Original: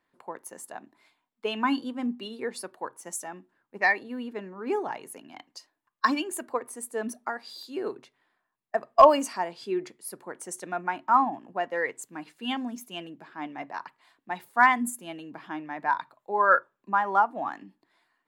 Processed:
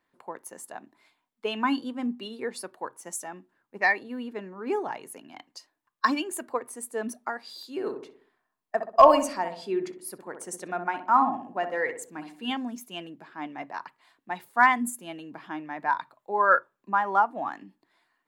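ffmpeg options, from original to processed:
ffmpeg -i in.wav -filter_complex "[0:a]asettb=1/sr,asplit=3[link_01][link_02][link_03];[link_01]atrim=end=7.724[link_04];[link_02]atrim=start=7.72:end=12.51,asetpts=PTS-STARTPTS,afade=type=in:duration=0.004:curve=qsin,afade=type=out:start_time=4.786:duration=0.004:curve=qsin,asplit=2[link_05][link_06];[link_06]adelay=63,lowpass=frequency=980:poles=1,volume=-6dB,asplit=2[link_07][link_08];[link_08]adelay=63,lowpass=frequency=980:poles=1,volume=0.52,asplit=2[link_09][link_10];[link_10]adelay=63,lowpass=frequency=980:poles=1,volume=0.52,asplit=2[link_11][link_12];[link_12]adelay=63,lowpass=frequency=980:poles=1,volume=0.52,asplit=2[link_13][link_14];[link_14]adelay=63,lowpass=frequency=980:poles=1,volume=0.52,asplit=2[link_15][link_16];[link_16]adelay=63,lowpass=frequency=980:poles=1,volume=0.52[link_17];[link_05][link_07][link_09][link_11][link_13][link_15][link_17]amix=inputs=7:normalize=0,atrim=end_sample=211239[link_18];[link_03]atrim=start=12.506[link_19];[link_04][link_18]acrossfade=duration=0.004:curve1=hsin:curve2=qsin[link_20];[link_20][link_19]acrossfade=duration=0.004:curve1=qsin:curve2=hsin" out.wav

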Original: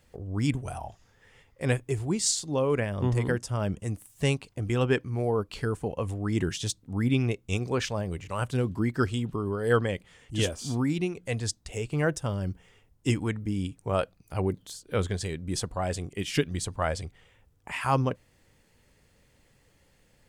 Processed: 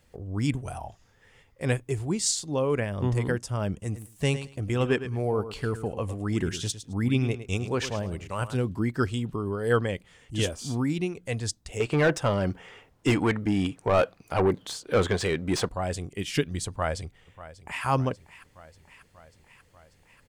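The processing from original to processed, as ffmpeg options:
ffmpeg -i in.wav -filter_complex "[0:a]asettb=1/sr,asplit=3[link_01][link_02][link_03];[link_01]atrim=end=3.734[link_04];[link_02]atrim=start=3.73:end=8.55,asetpts=PTS-STARTPTS,afade=type=in:duration=0.004:curve=qsin,afade=type=out:start_time=4.816:duration=0.004:curve=qsin,aecho=1:1:107|214:0.251|0.0427,atrim=end_sample=212562[link_05];[link_03]atrim=start=8.546[link_06];[link_04][link_05]acrossfade=duration=0.004:curve1=hsin:curve2=qsin[link_07];[link_07][link_06]acrossfade=duration=0.004:curve1=qsin:curve2=hsin,asettb=1/sr,asplit=3[link_08][link_09][link_10];[link_08]atrim=end=11.804[link_11];[link_09]atrim=start=11.8:end=15.69,asetpts=PTS-STARTPTS,afade=type=in:duration=0.004:curve=qsin,afade=type=out:start_time=3.886:duration=0.004:curve=qsin,asplit=2[link_12][link_13];[link_13]highpass=frequency=720:poles=1,volume=23dB,asoftclip=type=tanh:threshold=-12dB[link_14];[link_12][link_14]amix=inputs=2:normalize=0,lowpass=frequency=1700:poles=1,volume=-6dB[link_15];[link_10]atrim=start=15.686[link_16];[link_11][link_15]acrossfade=duration=0.004:curve1=hsin:curve2=qsin[link_17];[link_17][link_16]acrossfade=duration=0.004:curve1=qsin:curve2=hsin,asplit=2[link_18][link_19];[link_19]afade=type=in:start_time=16.68:duration=0.01,afade=type=out:start_time=17.84:duration=0.01,aecho=0:1:590|1180|1770|2360|2950|3540|4130|4720:0.158489|0.110943|0.0776598|0.0543618|0.0380533|0.0266373|0.0186461|0.0130523[link_20];[link_18][link_20]amix=inputs=2:normalize=0" out.wav

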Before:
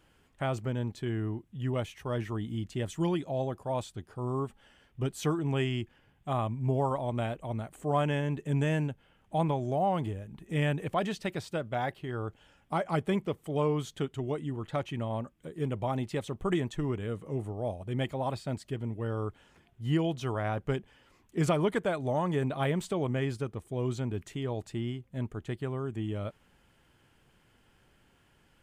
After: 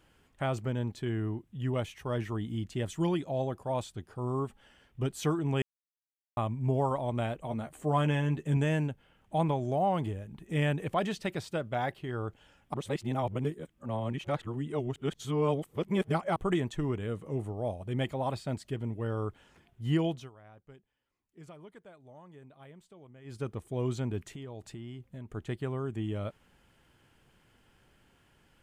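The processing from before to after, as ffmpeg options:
ffmpeg -i in.wav -filter_complex "[0:a]asettb=1/sr,asplit=3[link_01][link_02][link_03];[link_01]atrim=end=7.414[link_04];[link_02]atrim=start=7.41:end=8.57,asetpts=PTS-STARTPTS,afade=type=in:duration=0.004:curve=qsin,afade=type=out:start_time=1.156:duration=0.004:curve=qsin,asplit=2[link_05][link_06];[link_06]adelay=13,volume=-7dB[link_07];[link_05][link_07]amix=inputs=2:normalize=0,atrim=end_sample=51156[link_08];[link_03]atrim=start=8.566[link_09];[link_04][link_08]acrossfade=duration=0.004:curve1=hsin:curve2=qsin[link_10];[link_10][link_09]acrossfade=duration=0.004:curve1=qsin:curve2=hsin,asettb=1/sr,asplit=3[link_11][link_12][link_13];[link_11]atrim=end=24.294[link_14];[link_12]atrim=start=24.29:end=25.31,asetpts=PTS-STARTPTS,afade=type=in:duration=0.004:curve=qsin,afade=type=out:start_time=1.016:duration=0.004:curve=qsin,acompressor=threshold=-39dB:ratio=6:attack=3.2:release=140:knee=1:detection=peak[link_15];[link_13]atrim=start=25.306[link_16];[link_14][link_15]acrossfade=duration=0.004:curve1=hsin:curve2=qsin[link_17];[link_17][link_16]acrossfade=duration=0.004:curve1=qsin:curve2=hsin,asplit=7[link_18][link_19][link_20][link_21][link_22][link_23][link_24];[link_18]atrim=end=5.62,asetpts=PTS-STARTPTS,afade=type=out:start_time=5.616:duration=0.004:curve=hsin[link_25];[link_19]atrim=start=5.62:end=6.37,asetpts=PTS-STARTPTS,volume=0[link_26];[link_20]atrim=start=6.37:end=12.742,asetpts=PTS-STARTPTS,afade=type=in:duration=0.004:curve=hsin[link_27];[link_21]atrim=start=12.738:end=16.362,asetpts=PTS-STARTPTS,areverse[link_28];[link_22]atrim=start=16.358:end=20.3,asetpts=PTS-STARTPTS,afade=type=out:start_time=3.712:duration=0.23:silence=0.0707946[link_29];[link_23]atrim=start=20.3:end=23.24,asetpts=PTS-STARTPTS,volume=-23dB[link_30];[link_24]atrim=start=23.24,asetpts=PTS-STARTPTS,afade=type=in:duration=0.23:silence=0.0707946[link_31];[link_25][link_26][link_27]concat=n=3:v=0:a=1[link_32];[link_32][link_28]acrossfade=duration=0.004:curve1=hsin:curve2=hsin[link_33];[link_29][link_30][link_31]concat=n=3:v=0:a=1[link_34];[link_33][link_34]acrossfade=duration=0.004:curve1=hsin:curve2=hsin" out.wav

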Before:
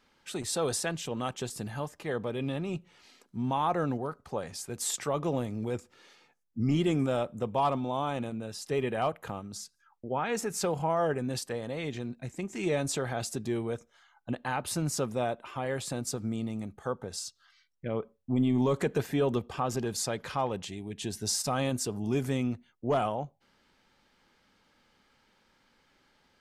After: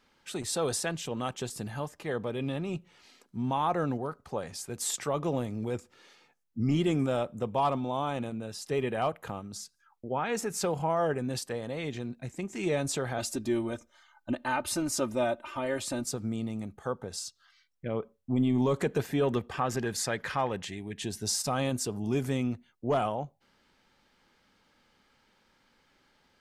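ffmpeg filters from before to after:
ffmpeg -i in.wav -filter_complex "[0:a]asettb=1/sr,asplit=3[link_01][link_02][link_03];[link_01]atrim=end=13.184[link_04];[link_02]atrim=start=13.18:end=16.04,asetpts=PTS-STARTPTS,afade=type=in:duration=0.004:curve=qsin,afade=type=out:start_time=2.856:duration=0.004:curve=qsin,aecho=1:1:3.3:0.74,atrim=end_sample=126126[link_05];[link_03]atrim=start=16.036[link_06];[link_04][link_05]acrossfade=duration=0.004:curve1=hsin:curve2=qsin[link_07];[link_07][link_06]acrossfade=duration=0.004:curve1=qsin:curve2=hsin,asettb=1/sr,asplit=3[link_08][link_09][link_10];[link_08]atrim=end=19.234[link_11];[link_09]atrim=start=19.23:end=21.04,asetpts=PTS-STARTPTS,afade=type=in:duration=0.004:curve=qsin,afade=type=out:start_time=1.806:duration=0.004:curve=qsin,equalizer=frequency=1800:width=2.3:gain=9.5[link_12];[link_10]atrim=start=21.036[link_13];[link_11][link_12]acrossfade=duration=0.004:curve1=hsin:curve2=qsin[link_14];[link_14][link_13]acrossfade=duration=0.004:curve1=qsin:curve2=hsin" out.wav

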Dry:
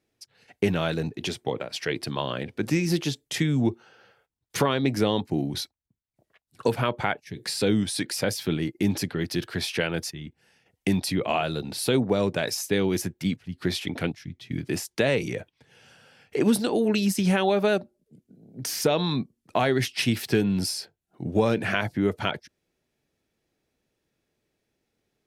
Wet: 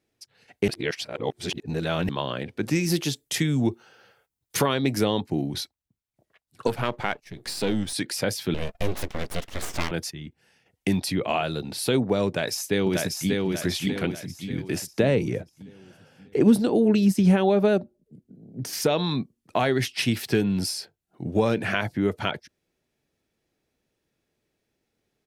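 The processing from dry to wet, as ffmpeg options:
ffmpeg -i in.wav -filter_complex "[0:a]asettb=1/sr,asplit=3[link_01][link_02][link_03];[link_01]atrim=end=2.754[link_04];[link_02]atrim=start=2.75:end=5.05,asetpts=PTS-STARTPTS,afade=type=in:duration=0.004:curve=qsin,afade=type=out:start_time=2.296:duration=0.004:curve=qsin,highshelf=frequency=7100:gain=9.5[link_05];[link_03]atrim=start=5.046[link_06];[link_04][link_05]acrossfade=duration=0.004:curve1=hsin:curve2=qsin[link_07];[link_07][link_06]acrossfade=duration=0.004:curve1=qsin:curve2=hsin,asettb=1/sr,asplit=3[link_08][link_09][link_10];[link_08]atrim=end=6.674[link_11];[link_09]atrim=start=6.67:end=7.93,asetpts=PTS-STARTPTS,afade=type=in:duration=0.004:curve=qsin,afade=type=out:start_time=1.256:duration=0.004:curve=qsin,aeval=exprs='if(lt(val(0),0),0.447*val(0),val(0))':channel_layout=same[link_12];[link_10]atrim=start=7.926[link_13];[link_11][link_12]acrossfade=duration=0.004:curve1=hsin:curve2=qsin[link_14];[link_14][link_13]acrossfade=duration=0.004:curve1=qsin:curve2=hsin,asettb=1/sr,asplit=3[link_15][link_16][link_17];[link_15]atrim=end=8.544[link_18];[link_16]atrim=start=8.54:end=9.91,asetpts=PTS-STARTPTS,afade=type=in:duration=0.004:curve=qsin,afade=type=out:start_time=1.366:duration=0.004:curve=qsin,aeval=exprs='abs(val(0))':channel_layout=same[link_19];[link_17]atrim=start=9.906[link_20];[link_18][link_19]acrossfade=duration=0.004:curve1=hsin:curve2=qsin[link_21];[link_21][link_20]acrossfade=duration=0.004:curve1=qsin:curve2=hsin,asplit=2[link_22][link_23];[link_23]afade=type=in:start_time=12.27:duration=0.01,afade=type=out:start_time=13.42:duration=0.01,aecho=0:1:590|1180|1770|2360|2950|3540:0.749894|0.337452|0.151854|0.0683341|0.0307503|0.0138377[link_24];[link_22][link_24]amix=inputs=2:normalize=0,asettb=1/sr,asplit=3[link_25][link_26][link_27];[link_25]atrim=end=14.934[link_28];[link_26]atrim=start=14.93:end=18.73,asetpts=PTS-STARTPTS,afade=type=in:duration=0.004:curve=qsin,afade=type=out:start_time=3.796:duration=0.004:curve=qsin,tiltshelf=frequency=720:gain=5.5[link_29];[link_27]atrim=start=18.726[link_30];[link_28][link_29]acrossfade=duration=0.004:curve1=hsin:curve2=qsin[link_31];[link_31][link_30]acrossfade=duration=0.004:curve1=qsin:curve2=hsin,asplit=3[link_32][link_33][link_34];[link_32]atrim=end=0.682[link_35];[link_33]atrim=start=0.678:end=2.092,asetpts=PTS-STARTPTS,areverse[link_36];[link_34]atrim=start=2.088[link_37];[link_35][link_36]acrossfade=duration=0.004:curve1=hsin:curve2=hsin[link_38];[link_38][link_37]acrossfade=duration=0.004:curve1=hsin:curve2=hsin" out.wav

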